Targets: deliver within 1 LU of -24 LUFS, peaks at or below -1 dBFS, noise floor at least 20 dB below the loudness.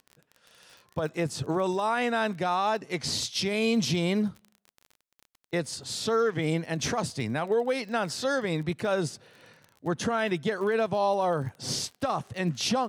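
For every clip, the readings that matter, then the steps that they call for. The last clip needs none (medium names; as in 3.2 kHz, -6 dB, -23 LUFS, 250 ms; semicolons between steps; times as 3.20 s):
tick rate 27 per s; loudness -28.5 LUFS; peak level -16.5 dBFS; loudness target -24.0 LUFS
-> de-click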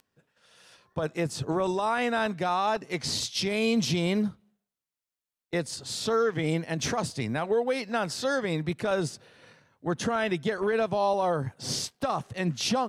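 tick rate 0.078 per s; loudness -28.5 LUFS; peak level -16.5 dBFS; loudness target -24.0 LUFS
-> trim +4.5 dB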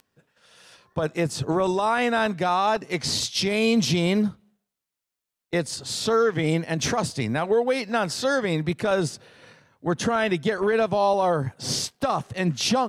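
loudness -24.0 LUFS; peak level -12.0 dBFS; noise floor -86 dBFS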